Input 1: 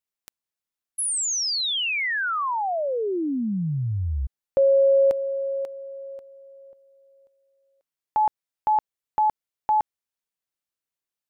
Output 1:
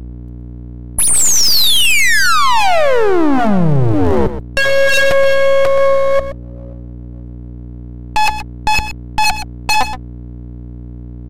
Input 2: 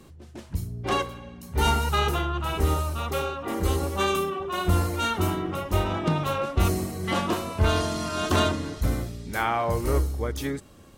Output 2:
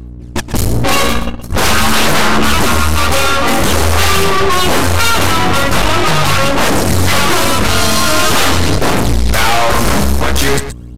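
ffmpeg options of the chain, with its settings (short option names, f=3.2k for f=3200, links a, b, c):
-filter_complex "[0:a]agate=range=-33dB:threshold=-41dB:ratio=16:release=31:detection=peak,acrossover=split=9900[a][b];[b]acompressor=threshold=-51dB:ratio=4:attack=1:release=60[c];[a][c]amix=inputs=2:normalize=0,asubboost=boost=2.5:cutoff=180,dynaudnorm=f=100:g=3:m=8dB,aphaser=in_gain=1:out_gain=1:delay=4.2:decay=0.56:speed=0.45:type=sinusoidal,aeval=exprs='1.88*sin(PI/2*8.91*val(0)/1.88)':c=same,apsyclip=11dB,aeval=exprs='val(0)+0.1*(sin(2*PI*60*n/s)+sin(2*PI*2*60*n/s)/2+sin(2*PI*3*60*n/s)/3+sin(2*PI*4*60*n/s)/4+sin(2*PI*5*60*n/s)/5)':c=same,aeval=exprs='clip(val(0),-1,0.0794)':c=same,asplit=2[d][e];[e]aecho=0:1:124:0.266[f];[d][f]amix=inputs=2:normalize=0,aresample=32000,aresample=44100,volume=-5.5dB"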